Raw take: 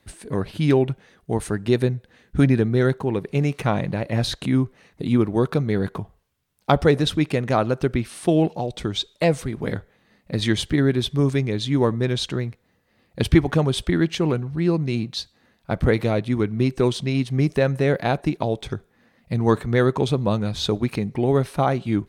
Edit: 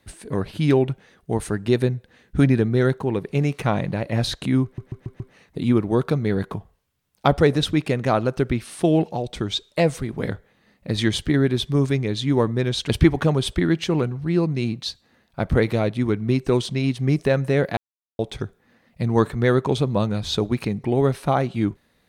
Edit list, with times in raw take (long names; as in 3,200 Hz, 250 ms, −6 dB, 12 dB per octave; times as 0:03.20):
0:04.64: stutter 0.14 s, 5 plays
0:12.33–0:13.20: remove
0:18.08–0:18.50: silence